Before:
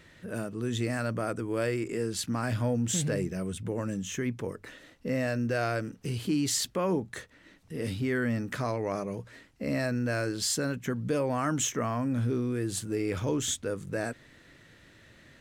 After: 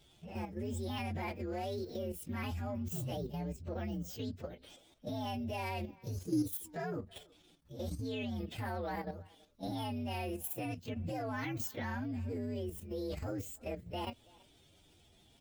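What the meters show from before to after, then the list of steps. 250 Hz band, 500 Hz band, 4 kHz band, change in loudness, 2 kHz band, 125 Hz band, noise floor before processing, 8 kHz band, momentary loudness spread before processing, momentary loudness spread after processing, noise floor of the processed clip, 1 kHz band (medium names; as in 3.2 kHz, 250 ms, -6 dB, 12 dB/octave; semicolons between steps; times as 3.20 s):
-8.5 dB, -10.0 dB, -11.0 dB, -9.0 dB, -10.5 dB, -8.5 dB, -57 dBFS, -17.5 dB, 9 LU, 6 LU, -65 dBFS, -5.5 dB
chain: frequency axis rescaled in octaves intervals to 130%; level held to a coarse grid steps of 9 dB; speakerphone echo 330 ms, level -23 dB; trim -2 dB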